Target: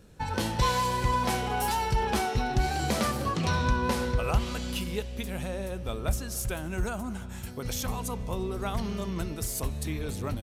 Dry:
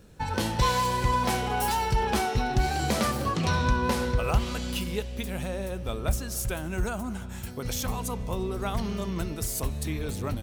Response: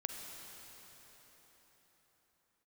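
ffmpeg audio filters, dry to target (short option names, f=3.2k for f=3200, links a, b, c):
-af "aresample=32000,aresample=44100,volume=-1.5dB"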